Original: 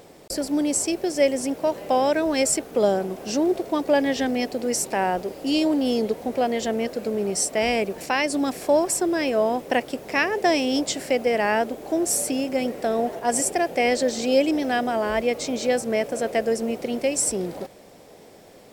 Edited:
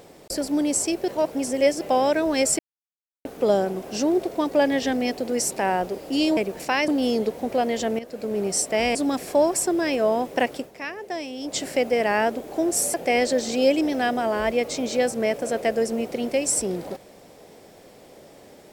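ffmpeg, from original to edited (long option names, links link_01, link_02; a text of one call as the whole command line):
ffmpeg -i in.wav -filter_complex "[0:a]asplit=11[link_01][link_02][link_03][link_04][link_05][link_06][link_07][link_08][link_09][link_10][link_11];[link_01]atrim=end=1.082[link_12];[link_02]atrim=start=1.078:end=1.812,asetpts=PTS-STARTPTS,areverse[link_13];[link_03]atrim=start=1.808:end=2.59,asetpts=PTS-STARTPTS,afade=type=out:start_time=0.778:duration=0.004:curve=hsin,apad=pad_dur=0.66[link_14];[link_04]atrim=start=2.59:end=5.712,asetpts=PTS-STARTPTS,afade=type=in:duration=0.004:curve=hsin[link_15];[link_05]atrim=start=7.778:end=8.292[link_16];[link_06]atrim=start=5.708:end=6.82,asetpts=PTS-STARTPTS,afade=type=out:start_time=1.108:duration=0.004:curve=hsin:silence=0.223872[link_17];[link_07]atrim=start=6.82:end=7.782,asetpts=PTS-STARTPTS,afade=type=in:duration=0.4:silence=0.223872[link_18];[link_08]atrim=start=8.288:end=10.06,asetpts=PTS-STARTPTS,afade=type=out:start_time=1.612:duration=0.16:silence=0.281838[link_19];[link_09]atrim=start=10.06:end=10.77,asetpts=PTS-STARTPTS,volume=-11dB[link_20];[link_10]atrim=start=10.77:end=12.282,asetpts=PTS-STARTPTS,afade=type=in:duration=0.16:silence=0.281838[link_21];[link_11]atrim=start=13.638[link_22];[link_12][link_13]acrossfade=duration=0.004:curve1=hsin:curve2=hsin[link_23];[link_14][link_15]concat=n=2:v=0:a=1[link_24];[link_23][link_24]acrossfade=duration=0.004:curve1=hsin:curve2=hsin[link_25];[link_25][link_16]acrossfade=duration=0.004:curve1=hsin:curve2=hsin[link_26];[link_17][link_18]concat=n=2:v=0:a=1[link_27];[link_26][link_27]acrossfade=duration=0.004:curve1=hsin:curve2=hsin[link_28];[link_19][link_20][link_21]concat=n=3:v=0:a=1[link_29];[link_28][link_29]acrossfade=duration=0.004:curve1=hsin:curve2=hsin[link_30];[link_30][link_22]acrossfade=duration=0.004:curve1=hsin:curve2=hsin" out.wav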